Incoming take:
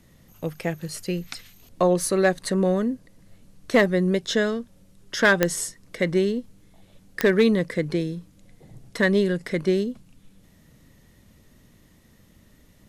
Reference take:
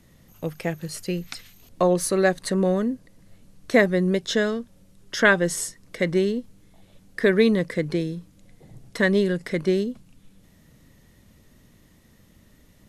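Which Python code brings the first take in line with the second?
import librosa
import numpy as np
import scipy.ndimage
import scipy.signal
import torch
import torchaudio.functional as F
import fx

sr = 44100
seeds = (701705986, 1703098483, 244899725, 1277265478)

y = fx.fix_declip(x, sr, threshold_db=-10.0)
y = fx.fix_declick_ar(y, sr, threshold=10.0)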